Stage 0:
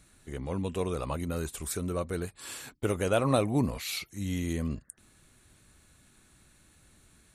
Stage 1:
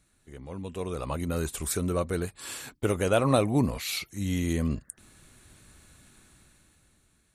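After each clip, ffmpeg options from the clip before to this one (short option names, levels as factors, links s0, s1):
-af "dynaudnorm=f=200:g=11:m=4.47,volume=0.422"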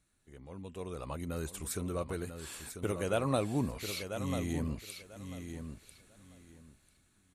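-af "aecho=1:1:993|1986|2979:0.398|0.0796|0.0159,volume=0.398"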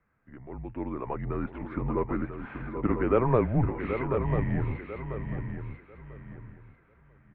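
-af "highpass=f=160:t=q:w=0.5412,highpass=f=160:t=q:w=1.307,lowpass=f=2200:t=q:w=0.5176,lowpass=f=2200:t=q:w=0.7071,lowpass=f=2200:t=q:w=1.932,afreqshift=-130,aecho=1:1:782:0.398,volume=2.66"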